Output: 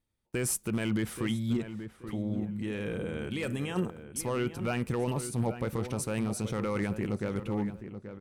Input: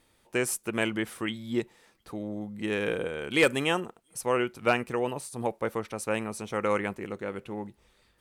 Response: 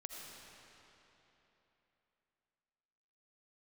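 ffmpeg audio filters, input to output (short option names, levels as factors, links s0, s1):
-filter_complex "[0:a]agate=range=0.0708:threshold=0.00224:ratio=16:detection=peak,bass=f=250:g=12,treble=f=4000:g=2,alimiter=limit=0.1:level=0:latency=1:release=19,asettb=1/sr,asplit=3[s0][s1][s2];[s0]atrim=end=1.574[s3];[s1]atrim=start=1.57:end=3.76,asetpts=PTS-STARTPTS,afade=t=in:d=0.004:c=qsin,afade=t=out:st=2.186:d=0.004:c=qsin,flanger=delay=0.1:depth=9.4:regen=-74:speed=1.5:shape=sinusoidal[s4];[s2]atrim=start=3.756[s5];[s3][s4]acrossfade=d=0.004:c1=hsin:c2=qsin[s6];[s6][s5]acrossfade=d=0.004:c1=qsin:c2=hsin,aeval=exprs='0.0891*(abs(mod(val(0)/0.0891+3,4)-2)-1)':c=same,asplit=2[s7][s8];[s8]adelay=830,lowpass=f=1900:p=1,volume=0.316,asplit=2[s9][s10];[s10]adelay=830,lowpass=f=1900:p=1,volume=0.3,asplit=2[s11][s12];[s12]adelay=830,lowpass=f=1900:p=1,volume=0.3[s13];[s7][s9][s11][s13]amix=inputs=4:normalize=0"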